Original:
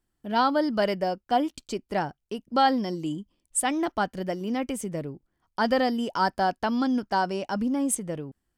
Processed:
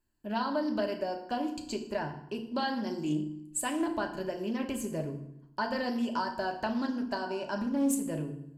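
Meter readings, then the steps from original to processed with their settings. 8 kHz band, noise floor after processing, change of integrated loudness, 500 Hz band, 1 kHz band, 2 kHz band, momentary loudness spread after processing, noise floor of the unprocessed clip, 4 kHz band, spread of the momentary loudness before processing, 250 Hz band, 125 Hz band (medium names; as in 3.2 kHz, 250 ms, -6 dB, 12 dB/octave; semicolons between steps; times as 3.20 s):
-6.5 dB, -53 dBFS, -6.5 dB, -6.0 dB, -9.5 dB, -6.0 dB, 6 LU, -79 dBFS, -6.5 dB, 11 LU, -4.0 dB, -3.0 dB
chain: rippled EQ curve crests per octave 1.4, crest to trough 10 dB; compression, threshold -25 dBFS, peak gain reduction 9.5 dB; flange 0.32 Hz, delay 9.2 ms, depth 4.9 ms, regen -86%; FDN reverb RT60 0.75 s, low-frequency decay 1.4×, high-frequency decay 0.8×, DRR 3.5 dB; loudspeaker Doppler distortion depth 0.14 ms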